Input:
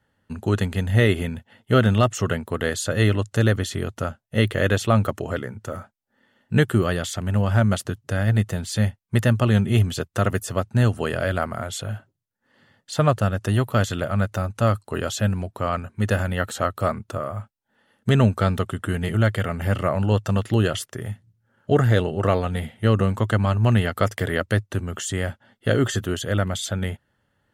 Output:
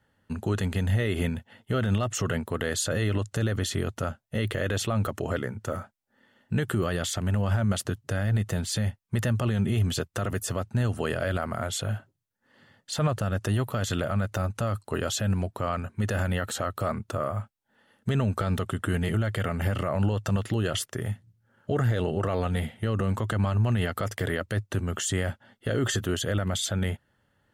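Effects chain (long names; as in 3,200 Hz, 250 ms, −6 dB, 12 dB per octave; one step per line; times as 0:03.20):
brickwall limiter −16.5 dBFS, peak gain reduction 12 dB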